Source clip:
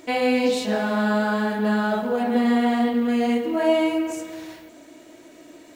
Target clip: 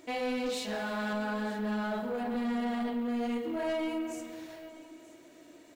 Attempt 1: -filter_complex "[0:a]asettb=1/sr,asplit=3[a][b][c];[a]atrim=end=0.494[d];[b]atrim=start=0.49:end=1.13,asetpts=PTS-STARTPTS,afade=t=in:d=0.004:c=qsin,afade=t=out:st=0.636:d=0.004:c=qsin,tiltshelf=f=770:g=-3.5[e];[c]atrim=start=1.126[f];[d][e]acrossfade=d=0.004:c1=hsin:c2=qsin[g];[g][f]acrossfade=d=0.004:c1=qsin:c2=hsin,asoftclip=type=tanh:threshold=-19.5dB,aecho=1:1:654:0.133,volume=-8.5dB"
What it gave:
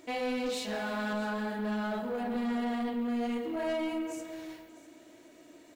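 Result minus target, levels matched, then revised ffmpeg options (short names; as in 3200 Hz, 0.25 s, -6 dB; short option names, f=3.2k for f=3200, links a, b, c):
echo 0.279 s early
-filter_complex "[0:a]asettb=1/sr,asplit=3[a][b][c];[a]atrim=end=0.494[d];[b]atrim=start=0.49:end=1.13,asetpts=PTS-STARTPTS,afade=t=in:d=0.004:c=qsin,afade=t=out:st=0.636:d=0.004:c=qsin,tiltshelf=f=770:g=-3.5[e];[c]atrim=start=1.126[f];[d][e]acrossfade=d=0.004:c1=hsin:c2=qsin[g];[g][f]acrossfade=d=0.004:c1=qsin:c2=hsin,asoftclip=type=tanh:threshold=-19.5dB,aecho=1:1:933:0.133,volume=-8.5dB"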